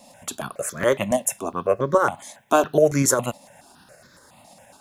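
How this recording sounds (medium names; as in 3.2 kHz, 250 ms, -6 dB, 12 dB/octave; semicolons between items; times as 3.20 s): a quantiser's noise floor 12-bit, dither none; tremolo saw up 8.6 Hz, depth 35%; notches that jump at a steady rate 7.2 Hz 400–2800 Hz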